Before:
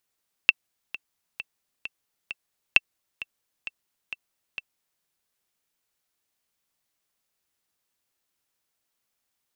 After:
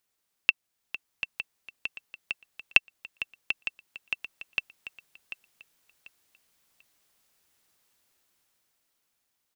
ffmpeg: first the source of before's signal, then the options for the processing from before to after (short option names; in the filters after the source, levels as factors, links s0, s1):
-f lavfi -i "aevalsrc='pow(10,(-1.5-18*gte(mod(t,5*60/132),60/132))/20)*sin(2*PI*2680*mod(t,60/132))*exp(-6.91*mod(t,60/132)/0.03)':d=4.54:s=44100"
-af "alimiter=limit=0.562:level=0:latency=1:release=479,dynaudnorm=f=220:g=13:m=2.82,aecho=1:1:741|1482|2223:0.282|0.0761|0.0205"